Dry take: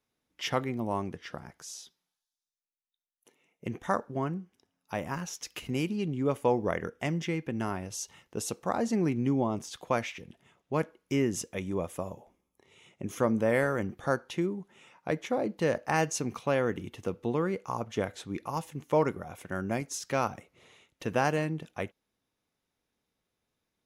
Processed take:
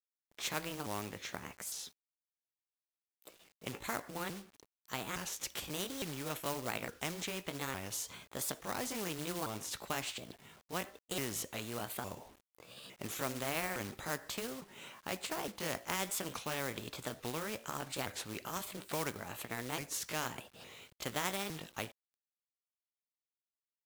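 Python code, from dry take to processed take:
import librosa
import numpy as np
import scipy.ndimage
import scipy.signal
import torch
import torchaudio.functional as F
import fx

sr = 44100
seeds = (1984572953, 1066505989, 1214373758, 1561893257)

y = fx.pitch_ramps(x, sr, semitones=5.0, every_ms=860)
y = fx.low_shelf(y, sr, hz=160.0, db=3.0)
y = fx.quant_companded(y, sr, bits=6)
y = fx.spectral_comp(y, sr, ratio=2.0)
y = F.gain(torch.from_numpy(y), -3.0).numpy()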